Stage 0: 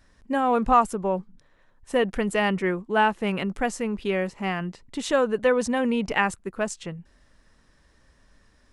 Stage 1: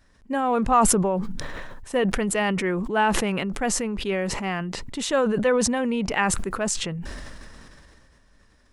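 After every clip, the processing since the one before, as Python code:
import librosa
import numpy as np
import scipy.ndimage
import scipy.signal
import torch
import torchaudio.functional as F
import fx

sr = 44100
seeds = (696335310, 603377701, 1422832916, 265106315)

y = fx.sustainer(x, sr, db_per_s=22.0)
y = y * 10.0 ** (-1.0 / 20.0)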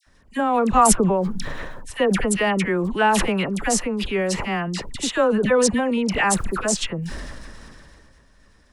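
y = fx.dispersion(x, sr, late='lows', ms=67.0, hz=1400.0)
y = y * 10.0 ** (3.0 / 20.0)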